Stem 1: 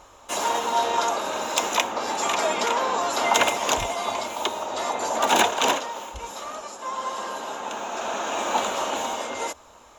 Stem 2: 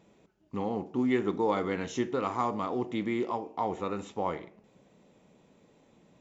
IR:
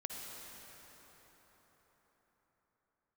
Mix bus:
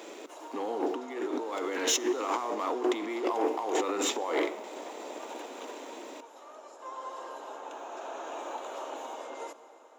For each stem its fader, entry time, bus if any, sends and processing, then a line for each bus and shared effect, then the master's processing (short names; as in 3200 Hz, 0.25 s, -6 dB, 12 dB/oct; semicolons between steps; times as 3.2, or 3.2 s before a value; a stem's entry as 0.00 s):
-13.5 dB, 0.00 s, send -9 dB, tilt shelf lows +5.5 dB, about 1200 Hz; compressor 5:1, threshold -23 dBFS, peak gain reduction 9.5 dB; auto duck -11 dB, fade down 0.20 s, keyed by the second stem
+3.0 dB, 0.00 s, send -15.5 dB, high shelf 4900 Hz +5 dB; negative-ratio compressor -41 dBFS, ratio -1; sample leveller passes 2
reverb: on, RT60 5.0 s, pre-delay 48 ms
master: steep high-pass 280 Hz 48 dB/oct